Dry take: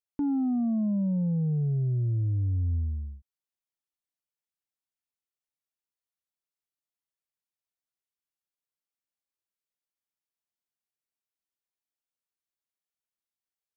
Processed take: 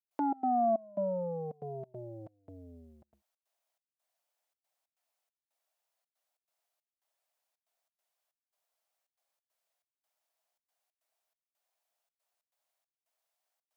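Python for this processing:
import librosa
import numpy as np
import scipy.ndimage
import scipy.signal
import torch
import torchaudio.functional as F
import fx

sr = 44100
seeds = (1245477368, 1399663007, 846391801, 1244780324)

y = fx.step_gate(x, sr, bpm=139, pattern='.xx.xxx..xxxxx', floor_db=-24.0, edge_ms=4.5)
y = fx.highpass_res(y, sr, hz=660.0, q=4.4)
y = y * librosa.db_to_amplitude(7.0)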